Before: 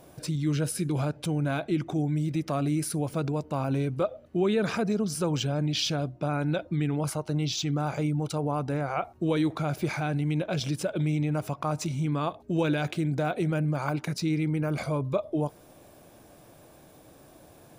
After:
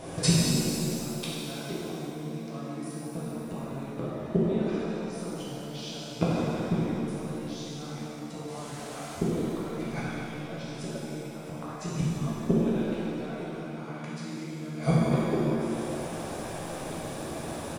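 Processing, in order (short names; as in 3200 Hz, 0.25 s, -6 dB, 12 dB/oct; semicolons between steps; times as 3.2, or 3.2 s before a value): flipped gate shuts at -22 dBFS, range -27 dB; 8.48–9.15 requantised 10-bit, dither triangular; downsampling 22050 Hz; shimmer reverb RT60 2.7 s, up +7 st, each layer -8 dB, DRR -8 dB; gain +8.5 dB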